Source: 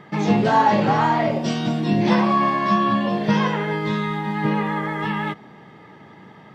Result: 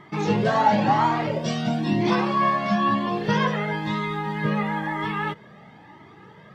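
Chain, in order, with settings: cascading flanger rising 1 Hz; gain +2.5 dB

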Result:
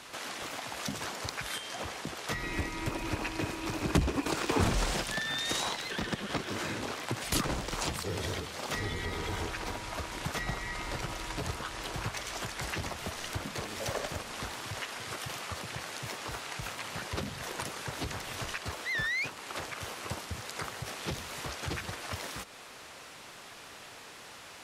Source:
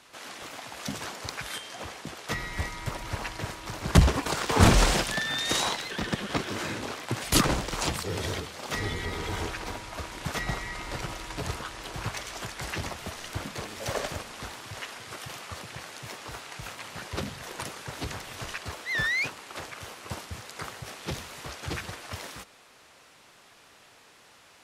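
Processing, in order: compressor 2:1, threshold -47 dBFS, peak gain reduction 19 dB; 2.42–4.6 small resonant body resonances 310/2500 Hz, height 12 dB -> 9 dB, ringing for 25 ms; gain +7 dB

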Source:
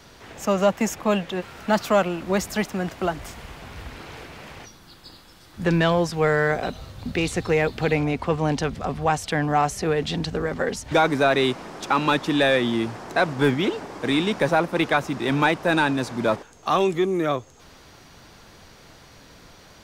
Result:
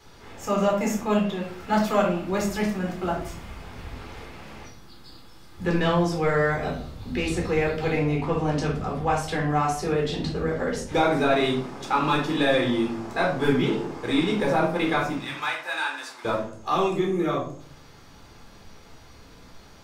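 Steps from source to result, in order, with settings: 15.16–16.25 HPF 1200 Hz 12 dB/oct; shoebox room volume 520 m³, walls furnished, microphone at 4 m; gain -8.5 dB

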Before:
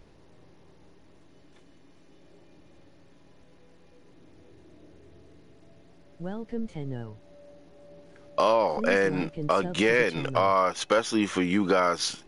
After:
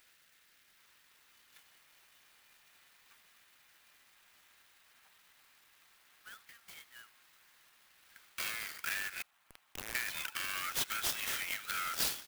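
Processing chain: soft clip -21.5 dBFS, distortion -10 dB; steep high-pass 1300 Hz 72 dB/oct; feedback echo 72 ms, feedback 57%, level -24 dB; 9.22–9.95 Schmitt trigger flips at -27 dBFS; compressor 6:1, threshold -35 dBFS, peak gain reduction 8 dB; tilt +3 dB/oct; echoes that change speed 0.77 s, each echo -7 st, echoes 2, each echo -6 dB; clock jitter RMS 0.04 ms; gain -1.5 dB

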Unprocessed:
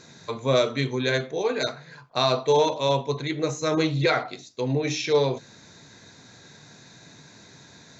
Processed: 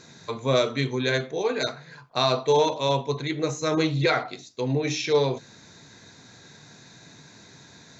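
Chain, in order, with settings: bell 570 Hz -2 dB 0.29 oct

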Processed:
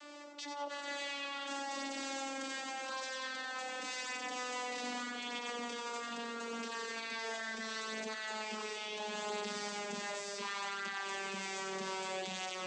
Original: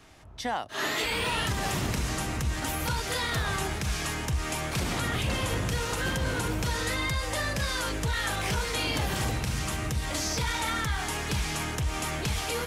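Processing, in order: vocoder on a gliding note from D4, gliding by -8 st; HPF 480 Hz 12 dB/oct; high shelf 2700 Hz +7.5 dB; negative-ratio compressor -39 dBFS, ratio -1; limiter -34 dBFS, peak gain reduction 12 dB; thin delay 91 ms, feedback 44%, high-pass 2100 Hz, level -5.5 dB; reverb RT60 0.65 s, pre-delay 4 ms, DRR 6.5 dB

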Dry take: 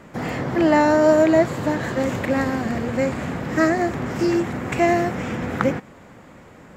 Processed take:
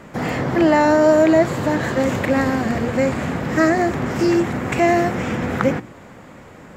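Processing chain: in parallel at -1 dB: limiter -13 dBFS, peak gain reduction 10 dB; on the sum: de-hum 59 Hz, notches 6; gain -1.5 dB

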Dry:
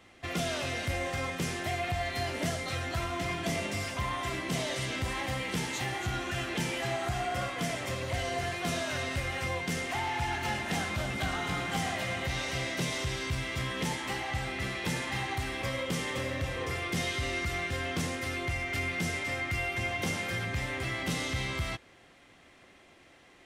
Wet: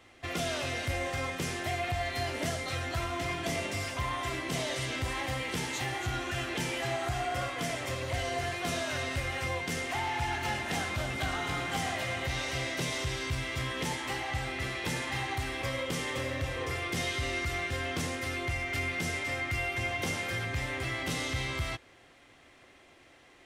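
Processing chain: bell 190 Hz -9.5 dB 0.28 oct

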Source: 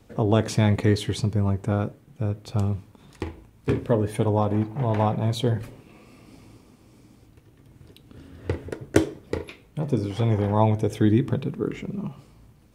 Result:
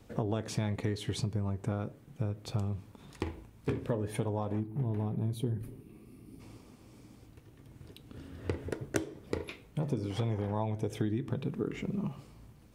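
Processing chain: spectral gain 4.6–6.4, 450–8800 Hz -12 dB; compressor 6:1, threshold -27 dBFS, peak gain reduction 14.5 dB; gain -2 dB

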